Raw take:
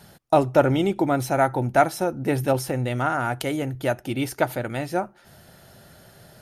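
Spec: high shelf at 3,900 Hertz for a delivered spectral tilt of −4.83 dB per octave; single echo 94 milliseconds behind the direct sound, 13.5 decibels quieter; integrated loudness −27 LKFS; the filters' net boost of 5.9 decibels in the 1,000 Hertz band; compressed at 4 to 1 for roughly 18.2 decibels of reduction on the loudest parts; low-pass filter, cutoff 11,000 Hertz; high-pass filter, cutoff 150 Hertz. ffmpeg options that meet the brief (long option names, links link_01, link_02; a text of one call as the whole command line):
ffmpeg -i in.wav -af "highpass=150,lowpass=11000,equalizer=frequency=1000:width_type=o:gain=8.5,highshelf=frequency=3900:gain=5,acompressor=threshold=-31dB:ratio=4,aecho=1:1:94:0.211,volume=7dB" out.wav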